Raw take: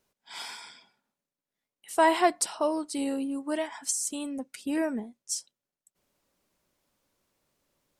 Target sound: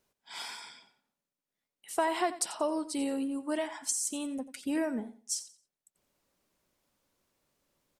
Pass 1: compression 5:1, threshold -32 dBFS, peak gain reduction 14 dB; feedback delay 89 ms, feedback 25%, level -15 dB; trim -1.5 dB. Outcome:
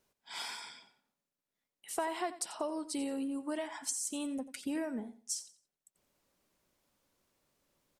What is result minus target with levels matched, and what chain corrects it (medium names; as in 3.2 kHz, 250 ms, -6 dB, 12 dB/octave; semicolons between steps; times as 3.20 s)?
compression: peak gain reduction +6.5 dB
compression 5:1, threshold -24 dBFS, peak gain reduction 7.5 dB; feedback delay 89 ms, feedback 25%, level -15 dB; trim -1.5 dB